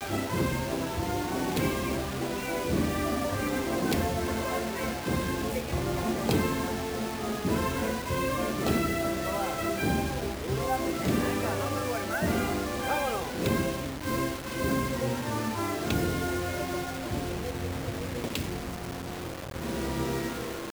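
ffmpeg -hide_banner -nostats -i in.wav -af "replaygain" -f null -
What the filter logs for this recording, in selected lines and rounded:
track_gain = +11.8 dB
track_peak = 0.174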